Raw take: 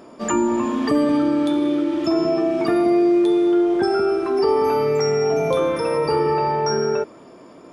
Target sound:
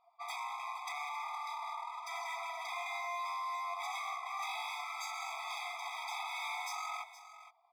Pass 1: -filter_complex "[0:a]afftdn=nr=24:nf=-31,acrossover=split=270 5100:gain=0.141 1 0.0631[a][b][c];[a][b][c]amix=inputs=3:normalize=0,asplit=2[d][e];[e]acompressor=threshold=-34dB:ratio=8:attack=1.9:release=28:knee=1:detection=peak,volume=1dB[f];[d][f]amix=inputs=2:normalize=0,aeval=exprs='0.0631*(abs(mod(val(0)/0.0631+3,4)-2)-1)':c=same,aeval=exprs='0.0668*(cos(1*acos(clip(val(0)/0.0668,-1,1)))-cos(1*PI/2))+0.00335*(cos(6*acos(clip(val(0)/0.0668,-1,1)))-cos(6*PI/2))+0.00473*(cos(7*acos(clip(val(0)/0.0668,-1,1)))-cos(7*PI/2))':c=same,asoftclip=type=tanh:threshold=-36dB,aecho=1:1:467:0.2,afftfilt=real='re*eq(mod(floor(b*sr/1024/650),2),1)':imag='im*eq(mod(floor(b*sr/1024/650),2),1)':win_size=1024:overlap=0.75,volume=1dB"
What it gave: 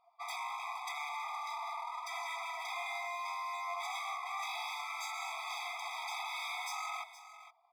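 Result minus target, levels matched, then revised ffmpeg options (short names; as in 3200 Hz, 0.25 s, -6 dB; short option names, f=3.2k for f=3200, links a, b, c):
compressor: peak gain reduction -10 dB
-filter_complex "[0:a]afftdn=nr=24:nf=-31,acrossover=split=270 5100:gain=0.141 1 0.0631[a][b][c];[a][b][c]amix=inputs=3:normalize=0,asplit=2[d][e];[e]acompressor=threshold=-45.5dB:ratio=8:attack=1.9:release=28:knee=1:detection=peak,volume=1dB[f];[d][f]amix=inputs=2:normalize=0,aeval=exprs='0.0631*(abs(mod(val(0)/0.0631+3,4)-2)-1)':c=same,aeval=exprs='0.0668*(cos(1*acos(clip(val(0)/0.0668,-1,1)))-cos(1*PI/2))+0.00335*(cos(6*acos(clip(val(0)/0.0668,-1,1)))-cos(6*PI/2))+0.00473*(cos(7*acos(clip(val(0)/0.0668,-1,1)))-cos(7*PI/2))':c=same,asoftclip=type=tanh:threshold=-36dB,aecho=1:1:467:0.2,afftfilt=real='re*eq(mod(floor(b*sr/1024/650),2),1)':imag='im*eq(mod(floor(b*sr/1024/650),2),1)':win_size=1024:overlap=0.75,volume=1dB"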